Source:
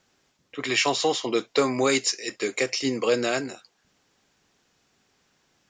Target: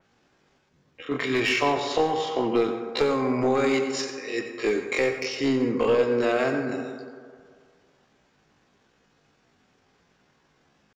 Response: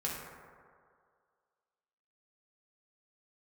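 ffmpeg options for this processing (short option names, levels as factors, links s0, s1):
-filter_complex "[0:a]aemphasis=mode=reproduction:type=75kf,acompressor=threshold=0.0631:ratio=5,atempo=0.52,aeval=exprs='clip(val(0),-1,0.0668)':c=same,asplit=2[s0][s1];[1:a]atrim=start_sample=2205,adelay=90[s2];[s1][s2]afir=irnorm=-1:irlink=0,volume=0.299[s3];[s0][s3]amix=inputs=2:normalize=0,adynamicequalizer=threshold=0.00398:dfrequency=3500:dqfactor=0.7:tfrequency=3500:tqfactor=0.7:attack=5:release=100:ratio=0.375:range=2.5:mode=cutabove:tftype=highshelf,volume=1.78"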